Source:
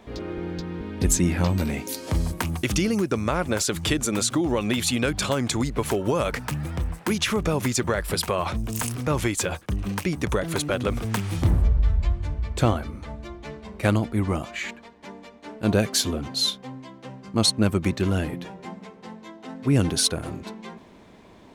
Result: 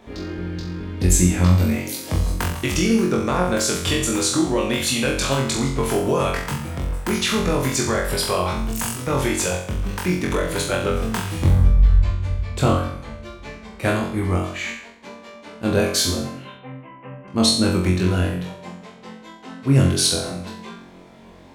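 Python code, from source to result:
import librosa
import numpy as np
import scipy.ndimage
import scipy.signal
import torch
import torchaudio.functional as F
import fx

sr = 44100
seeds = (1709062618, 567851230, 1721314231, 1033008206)

p1 = fx.cheby1_lowpass(x, sr, hz=2800.0, order=6, at=(16.11, 17.28))
y = p1 + fx.room_flutter(p1, sr, wall_m=3.8, rt60_s=0.59, dry=0)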